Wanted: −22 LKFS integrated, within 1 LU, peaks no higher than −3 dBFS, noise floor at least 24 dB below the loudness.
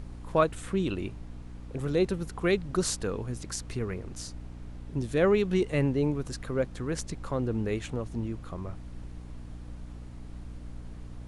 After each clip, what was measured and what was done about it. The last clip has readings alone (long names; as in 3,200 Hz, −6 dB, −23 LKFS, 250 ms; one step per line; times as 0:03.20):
mains hum 60 Hz; hum harmonics up to 300 Hz; level of the hum −40 dBFS; background noise floor −43 dBFS; target noise floor −55 dBFS; integrated loudness −30.5 LKFS; sample peak −10.5 dBFS; target loudness −22.0 LKFS
→ mains-hum notches 60/120/180/240/300 Hz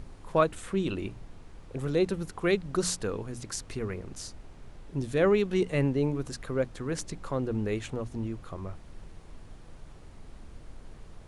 mains hum none found; background noise floor −49 dBFS; target noise floor −55 dBFS
→ noise reduction from a noise print 6 dB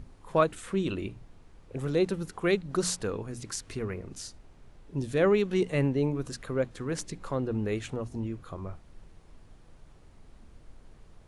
background noise floor −55 dBFS; integrated loudness −30.5 LKFS; sample peak −10.5 dBFS; target loudness −22.0 LKFS
→ level +8.5 dB
brickwall limiter −3 dBFS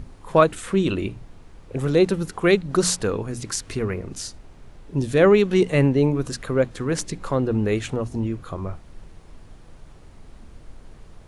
integrated loudness −22.0 LKFS; sample peak −3.0 dBFS; background noise floor −46 dBFS